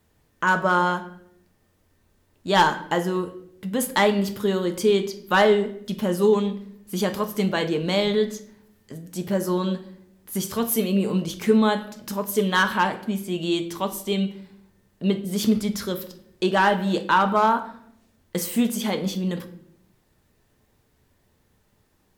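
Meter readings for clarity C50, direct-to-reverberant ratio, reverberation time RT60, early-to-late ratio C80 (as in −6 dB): 13.0 dB, 7.0 dB, 0.70 s, 16.0 dB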